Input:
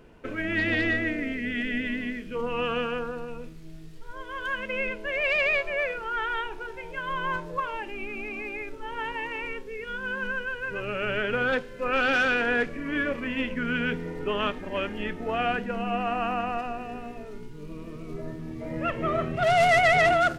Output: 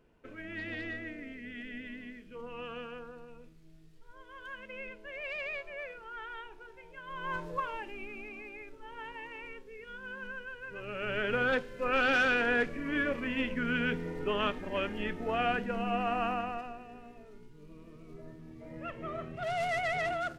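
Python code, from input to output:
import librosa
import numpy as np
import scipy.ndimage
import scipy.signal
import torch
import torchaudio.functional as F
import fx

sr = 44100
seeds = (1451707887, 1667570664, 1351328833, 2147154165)

y = fx.gain(x, sr, db=fx.line((7.05, -14.0), (7.44, -3.5), (8.5, -11.5), (10.69, -11.5), (11.3, -3.5), (16.26, -3.5), (16.84, -12.5)))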